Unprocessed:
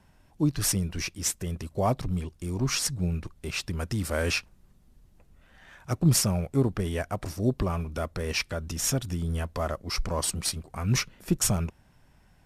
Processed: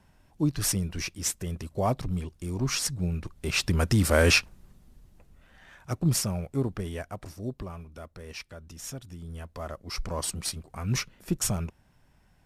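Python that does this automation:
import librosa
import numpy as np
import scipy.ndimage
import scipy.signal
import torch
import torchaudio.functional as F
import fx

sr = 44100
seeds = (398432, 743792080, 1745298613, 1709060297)

y = fx.gain(x, sr, db=fx.line((3.15, -1.0), (3.68, 7.0), (4.36, 7.0), (6.2, -4.0), (6.77, -4.0), (7.87, -12.0), (9.14, -12.0), (10.1, -3.0)))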